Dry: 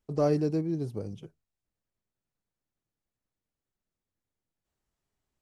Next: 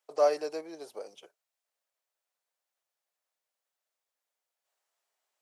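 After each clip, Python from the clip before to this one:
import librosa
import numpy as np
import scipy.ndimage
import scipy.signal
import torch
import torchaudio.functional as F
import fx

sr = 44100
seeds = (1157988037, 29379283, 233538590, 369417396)

y = scipy.signal.sosfilt(scipy.signal.cheby1(3, 1.0, 590.0, 'highpass', fs=sr, output='sos'), x)
y = F.gain(torch.from_numpy(y), 5.0).numpy()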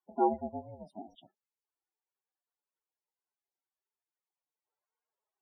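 y = x * np.sin(2.0 * np.pi * 220.0 * np.arange(len(x)) / sr)
y = fx.spec_topn(y, sr, count=16)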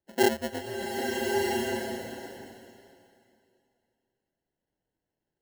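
y = fx.sample_hold(x, sr, seeds[0], rate_hz=1200.0, jitter_pct=0)
y = fx.rev_bloom(y, sr, seeds[1], attack_ms=1260, drr_db=-1.5)
y = F.gain(torch.from_numpy(y), 4.0).numpy()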